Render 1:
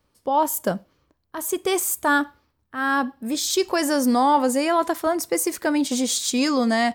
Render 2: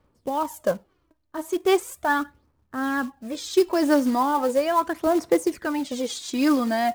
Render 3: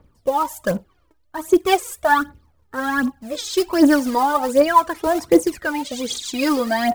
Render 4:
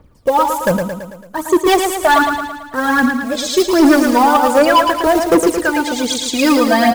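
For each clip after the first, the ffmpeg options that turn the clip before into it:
-af "aphaser=in_gain=1:out_gain=1:delay=3.3:decay=0.59:speed=0.38:type=sinusoidal,aemphasis=mode=reproduction:type=75kf,acrusher=bits=5:mode=log:mix=0:aa=0.000001,volume=-3dB"
-af "aphaser=in_gain=1:out_gain=1:delay=2.5:decay=0.67:speed=1.3:type=triangular,volume=3dB"
-filter_complex "[0:a]asoftclip=type=hard:threshold=-13dB,asplit=2[a][b];[b]aecho=0:1:111|222|333|444|555|666|777:0.501|0.276|0.152|0.0834|0.0459|0.0252|0.0139[c];[a][c]amix=inputs=2:normalize=0,volume=6.5dB"

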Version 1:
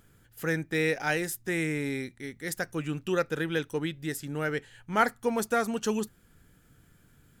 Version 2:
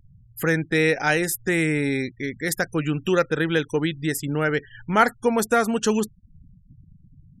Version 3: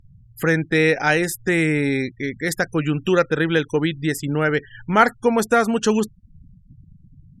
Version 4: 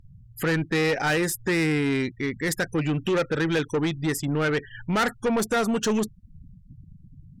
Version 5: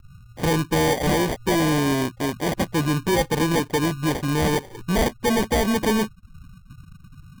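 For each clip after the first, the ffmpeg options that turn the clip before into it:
-filter_complex "[0:a]afftfilt=real='re*gte(hypot(re,im),0.00501)':imag='im*gte(hypot(re,im),0.00501)':win_size=1024:overlap=0.75,asplit=2[a][b];[b]acompressor=threshold=-37dB:ratio=6,volume=1.5dB[c];[a][c]amix=inputs=2:normalize=0,volume=5dB"
-af "highshelf=f=10k:g=-10.5,volume=3dB"
-af "asoftclip=type=tanh:threshold=-19dB"
-af "acrusher=samples=33:mix=1:aa=0.000001,volume=3dB"

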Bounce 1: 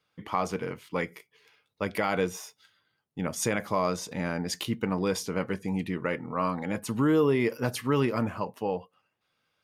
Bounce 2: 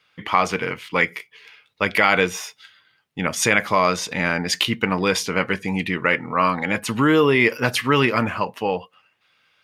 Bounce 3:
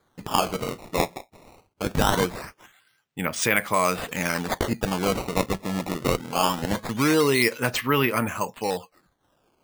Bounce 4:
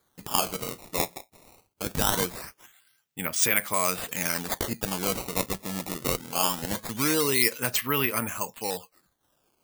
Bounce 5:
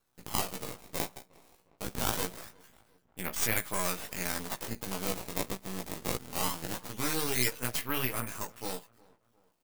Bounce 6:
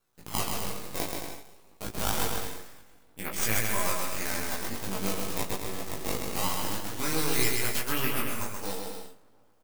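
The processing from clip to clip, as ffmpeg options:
-af "equalizer=f=2.4k:t=o:w=2.2:g=12,volume=5dB"
-af "acrusher=samples=16:mix=1:aa=0.000001:lfo=1:lforange=25.6:lforate=0.22,volume=-4dB"
-af "crystalizer=i=2.5:c=0,volume=-6.5dB"
-filter_complex "[0:a]flanger=delay=15.5:depth=2.8:speed=1.6,asplit=2[a][b];[b]adelay=357,lowpass=f=1.7k:p=1,volume=-24dB,asplit=2[c][d];[d]adelay=357,lowpass=f=1.7k:p=1,volume=0.52,asplit=2[e][f];[f]adelay=357,lowpass=f=1.7k:p=1,volume=0.52[g];[a][c][e][g]amix=inputs=4:normalize=0,aeval=exprs='max(val(0),0)':c=same"
-af "flanger=delay=18.5:depth=2.4:speed=0.54,aecho=1:1:130|221|284.7|329.3|360.5:0.631|0.398|0.251|0.158|0.1,volume=4dB"

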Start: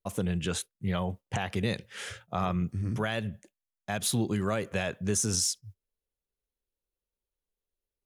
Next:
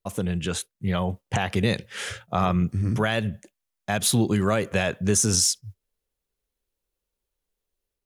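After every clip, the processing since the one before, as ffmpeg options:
-af "dynaudnorm=f=660:g=3:m=4dB,volume=3dB"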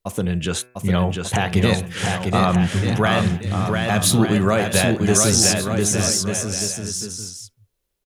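-filter_complex "[0:a]bandreject=f=124.4:t=h:w=4,bandreject=f=248.8:t=h:w=4,bandreject=f=373.2:t=h:w=4,bandreject=f=497.6:t=h:w=4,bandreject=f=622:t=h:w=4,bandreject=f=746.4:t=h:w=4,bandreject=f=870.8:t=h:w=4,bandreject=f=995.2:t=h:w=4,bandreject=f=1.1196k:t=h:w=4,bandreject=f=1.244k:t=h:w=4,bandreject=f=1.3684k:t=h:w=4,bandreject=f=1.4928k:t=h:w=4,bandreject=f=1.6172k:t=h:w=4,bandreject=f=1.7416k:t=h:w=4,bandreject=f=1.866k:t=h:w=4,bandreject=f=1.9904k:t=h:w=4,bandreject=f=2.1148k:t=h:w=4,bandreject=f=2.2392k:t=h:w=4,bandreject=f=2.3636k:t=h:w=4,bandreject=f=2.488k:t=h:w=4,bandreject=f=2.6124k:t=h:w=4,asplit=2[a][b];[b]aecho=0:1:700|1190|1533|1773|1941:0.631|0.398|0.251|0.158|0.1[c];[a][c]amix=inputs=2:normalize=0,volume=4.5dB"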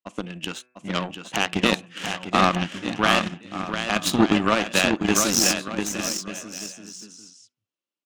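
-af "highpass=f=180:w=0.5412,highpass=f=180:w=1.3066,equalizer=f=300:t=q:w=4:g=9,equalizer=f=420:t=q:w=4:g=-8,equalizer=f=1.2k:t=q:w=4:g=5,equalizer=f=2.8k:t=q:w=4:g=8,lowpass=f=7.6k:w=0.5412,lowpass=f=7.6k:w=1.3066,aeval=exprs='0.794*(cos(1*acos(clip(val(0)/0.794,-1,1)))-cos(1*PI/2))+0.0501*(cos(3*acos(clip(val(0)/0.794,-1,1)))-cos(3*PI/2))+0.0708*(cos(7*acos(clip(val(0)/0.794,-1,1)))-cos(7*PI/2))':c=same,volume=1dB"

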